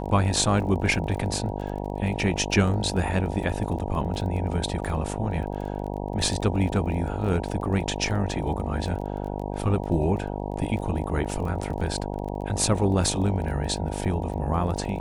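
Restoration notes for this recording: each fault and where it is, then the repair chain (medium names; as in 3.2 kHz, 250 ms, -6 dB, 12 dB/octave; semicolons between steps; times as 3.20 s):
buzz 50 Hz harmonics 19 -31 dBFS
crackle 21 per s -34 dBFS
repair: de-click; de-hum 50 Hz, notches 19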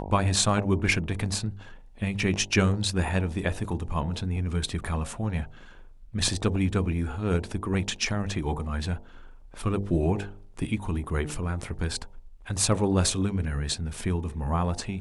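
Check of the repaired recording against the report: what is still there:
nothing left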